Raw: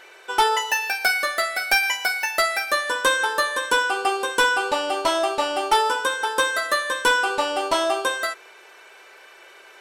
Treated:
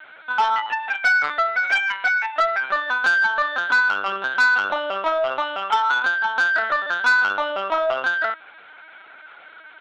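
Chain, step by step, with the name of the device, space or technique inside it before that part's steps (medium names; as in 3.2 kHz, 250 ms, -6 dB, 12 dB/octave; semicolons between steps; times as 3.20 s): 5.40–5.96 s: high-pass 670 Hz 12 dB/octave; comb 3.2 ms, depth 52%; talking toy (LPC vocoder at 8 kHz pitch kept; high-pass 440 Hz 12 dB/octave; peaking EQ 1.4 kHz +9 dB 0.26 oct; saturation -11.5 dBFS, distortion -15 dB)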